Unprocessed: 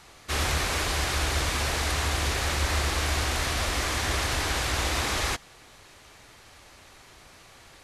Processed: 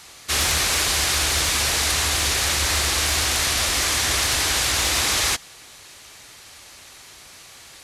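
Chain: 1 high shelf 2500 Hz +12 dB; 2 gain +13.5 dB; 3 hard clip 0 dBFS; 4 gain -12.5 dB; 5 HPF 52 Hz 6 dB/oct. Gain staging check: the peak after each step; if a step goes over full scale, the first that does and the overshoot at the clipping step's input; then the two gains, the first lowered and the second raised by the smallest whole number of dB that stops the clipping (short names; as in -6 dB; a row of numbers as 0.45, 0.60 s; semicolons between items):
-7.0, +6.5, 0.0, -12.5, -11.0 dBFS; step 2, 6.5 dB; step 2 +6.5 dB, step 4 -5.5 dB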